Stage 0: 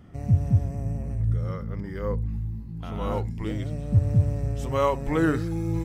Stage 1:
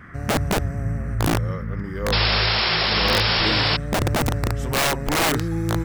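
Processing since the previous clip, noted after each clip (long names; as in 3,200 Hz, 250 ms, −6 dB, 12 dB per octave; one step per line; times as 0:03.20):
wrap-around overflow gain 18.5 dB
sound drawn into the spectrogram noise, 0:02.12–0:03.77, 330–5,500 Hz −25 dBFS
noise in a band 1,100–2,000 Hz −50 dBFS
level +4 dB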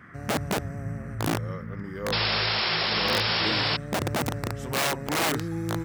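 high-pass filter 110 Hz 12 dB per octave
level −5 dB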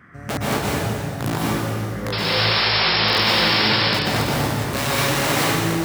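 convolution reverb RT60 2.0 s, pre-delay 113 ms, DRR −6.5 dB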